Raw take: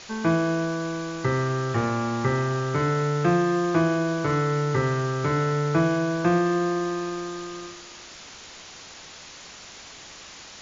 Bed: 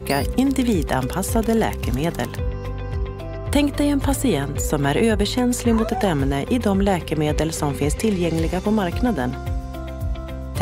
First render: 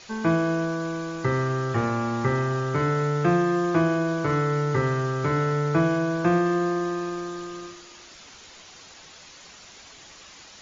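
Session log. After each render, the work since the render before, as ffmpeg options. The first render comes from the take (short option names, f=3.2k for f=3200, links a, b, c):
-af "afftdn=nr=6:nf=-44"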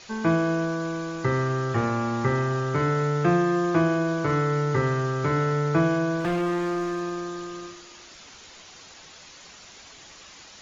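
-filter_complex "[0:a]asettb=1/sr,asplit=3[a][b][c];[a]atrim=end=6.204[d];[b]atrim=start=6.2:end=7.16,asetpts=PTS-STARTPTS,afade=t=in:d=0.004:c=qsin,afade=t=out:st=0.956:d=0.004:c=qsin,volume=23dB,asoftclip=hard,volume=-23dB[e];[c]atrim=start=7.156[f];[d][e]acrossfade=d=0.004:c1=hsin:c2=qsin[g];[g][f]acrossfade=d=0.004:c1=qsin:c2=hsin"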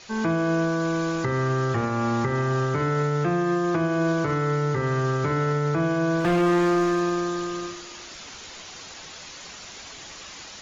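-af "alimiter=limit=-22dB:level=0:latency=1:release=385,dynaudnorm=f=100:g=3:m=6dB"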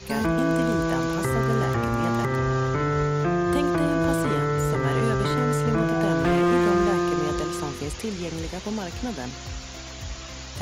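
-filter_complex "[1:a]volume=-10.5dB[a];[0:a][a]amix=inputs=2:normalize=0"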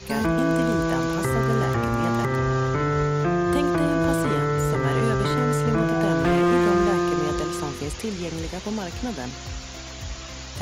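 -af "volume=1dB"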